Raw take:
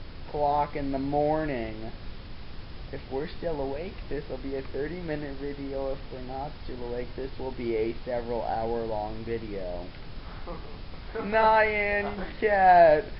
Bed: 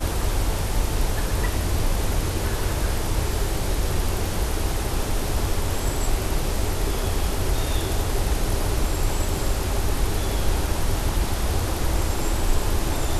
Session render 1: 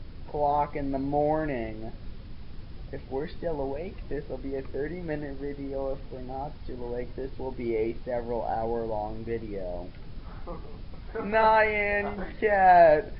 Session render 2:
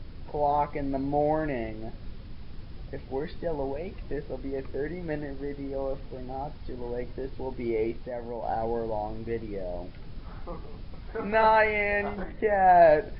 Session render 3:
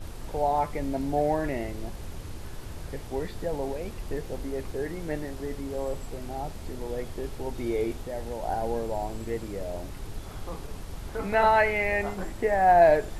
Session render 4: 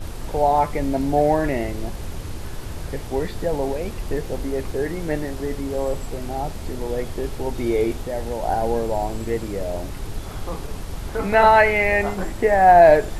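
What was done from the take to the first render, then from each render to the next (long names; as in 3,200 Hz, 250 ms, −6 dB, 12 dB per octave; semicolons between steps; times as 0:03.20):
broadband denoise 8 dB, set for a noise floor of −42 dBFS
0:07.96–0:08.43: downward compressor 2 to 1, threshold −34 dBFS; 0:12.23–0:12.82: high-shelf EQ 2,300 Hz −11.5 dB
mix in bed −18 dB
level +7.5 dB; brickwall limiter −3 dBFS, peak gain reduction 2 dB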